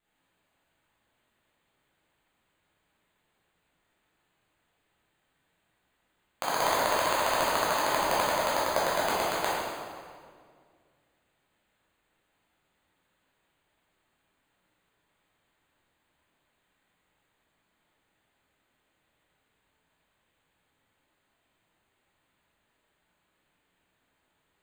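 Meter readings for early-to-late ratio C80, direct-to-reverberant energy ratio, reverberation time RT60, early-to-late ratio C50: −0.5 dB, −9.0 dB, 2.0 s, −3.0 dB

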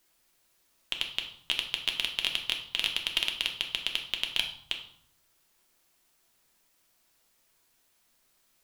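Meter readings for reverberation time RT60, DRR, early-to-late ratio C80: 0.65 s, 2.5 dB, 12.0 dB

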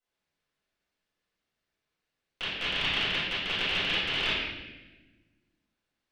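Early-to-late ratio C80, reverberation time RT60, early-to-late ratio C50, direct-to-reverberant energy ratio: 1.5 dB, 1.2 s, −1.5 dB, −13.5 dB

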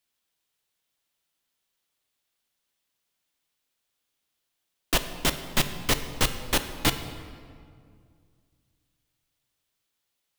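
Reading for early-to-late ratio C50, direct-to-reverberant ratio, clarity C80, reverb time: 10.0 dB, 8.5 dB, 11.5 dB, 2.2 s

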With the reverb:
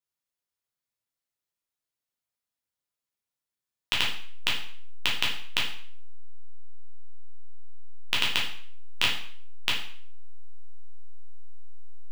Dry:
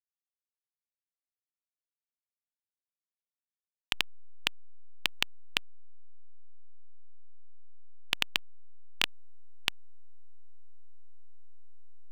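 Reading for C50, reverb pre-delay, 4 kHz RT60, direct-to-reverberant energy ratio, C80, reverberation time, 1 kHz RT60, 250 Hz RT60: 5.0 dB, 5 ms, 0.50 s, −4.5 dB, 9.5 dB, 0.55 s, 0.55 s, 0.50 s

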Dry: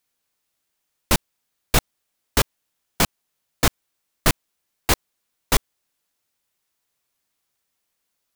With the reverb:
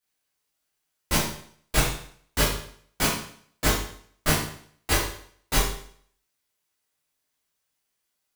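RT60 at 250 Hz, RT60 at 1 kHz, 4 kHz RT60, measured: 0.60 s, 0.60 s, 0.55 s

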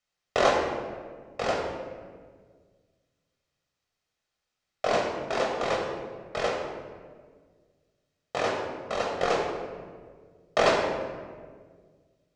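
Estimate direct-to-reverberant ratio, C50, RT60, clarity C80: −1.0 dB, 3.5 dB, 1.7 s, 5.0 dB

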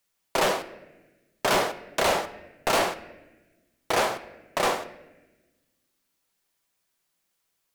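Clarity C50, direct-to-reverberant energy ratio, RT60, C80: 14.5 dB, 9.5 dB, 1.1 s, 16.5 dB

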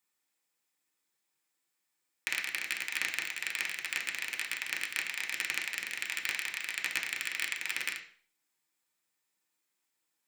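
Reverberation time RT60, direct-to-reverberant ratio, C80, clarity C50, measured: 0.50 s, −1.0 dB, 13.0 dB, 9.5 dB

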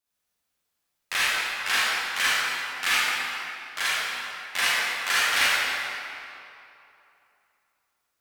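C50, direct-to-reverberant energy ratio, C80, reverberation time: −7.0 dB, −10.5 dB, −4.0 dB, 2.8 s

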